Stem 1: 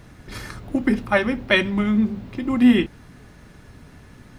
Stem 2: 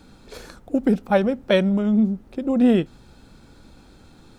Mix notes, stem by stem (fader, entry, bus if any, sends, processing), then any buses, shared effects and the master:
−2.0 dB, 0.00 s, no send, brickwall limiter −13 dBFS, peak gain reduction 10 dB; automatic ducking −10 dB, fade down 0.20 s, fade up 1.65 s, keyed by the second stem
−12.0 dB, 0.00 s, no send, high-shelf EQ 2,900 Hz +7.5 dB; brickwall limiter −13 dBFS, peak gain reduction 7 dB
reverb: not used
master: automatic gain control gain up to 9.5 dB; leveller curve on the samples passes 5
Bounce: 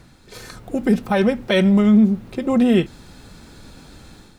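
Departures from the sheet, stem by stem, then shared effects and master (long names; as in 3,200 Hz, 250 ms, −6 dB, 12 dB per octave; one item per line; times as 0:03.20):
stem 2 −12.0 dB → −5.5 dB
master: missing leveller curve on the samples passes 5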